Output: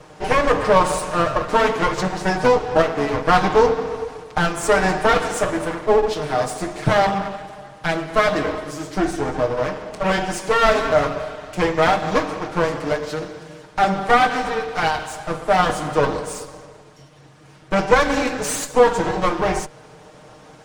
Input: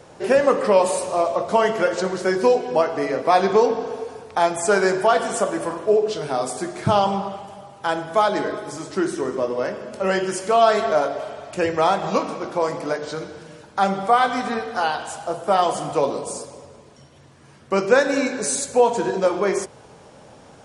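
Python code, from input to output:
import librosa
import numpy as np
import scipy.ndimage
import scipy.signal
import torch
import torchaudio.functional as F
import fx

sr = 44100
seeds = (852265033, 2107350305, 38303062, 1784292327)

y = fx.lower_of_two(x, sr, delay_ms=6.5)
y = fx.high_shelf(y, sr, hz=9800.0, db=-8.5)
y = y * librosa.db_to_amplitude(3.5)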